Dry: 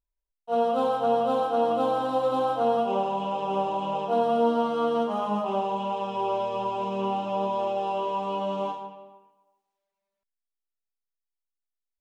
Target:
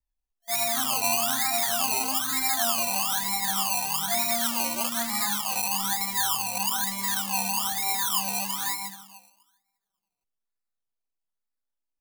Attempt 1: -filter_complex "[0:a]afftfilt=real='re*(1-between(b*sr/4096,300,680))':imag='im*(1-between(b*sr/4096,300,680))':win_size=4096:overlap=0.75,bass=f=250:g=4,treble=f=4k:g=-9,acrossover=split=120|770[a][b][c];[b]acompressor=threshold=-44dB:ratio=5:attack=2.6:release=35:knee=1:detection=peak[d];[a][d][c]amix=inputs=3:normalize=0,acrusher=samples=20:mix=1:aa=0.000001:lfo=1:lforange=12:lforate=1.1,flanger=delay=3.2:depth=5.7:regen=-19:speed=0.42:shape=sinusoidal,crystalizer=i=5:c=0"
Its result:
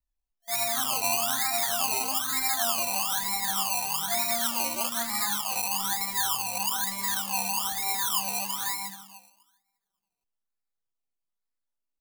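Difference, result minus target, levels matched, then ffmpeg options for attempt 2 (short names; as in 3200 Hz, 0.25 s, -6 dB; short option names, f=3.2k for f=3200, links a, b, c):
compressor: peak gain reduction +7 dB
-filter_complex "[0:a]afftfilt=real='re*(1-between(b*sr/4096,300,680))':imag='im*(1-between(b*sr/4096,300,680))':win_size=4096:overlap=0.75,bass=f=250:g=4,treble=f=4k:g=-9,acrossover=split=120|770[a][b][c];[b]acompressor=threshold=-35.5dB:ratio=5:attack=2.6:release=35:knee=1:detection=peak[d];[a][d][c]amix=inputs=3:normalize=0,acrusher=samples=20:mix=1:aa=0.000001:lfo=1:lforange=12:lforate=1.1,flanger=delay=3.2:depth=5.7:regen=-19:speed=0.42:shape=sinusoidal,crystalizer=i=5:c=0"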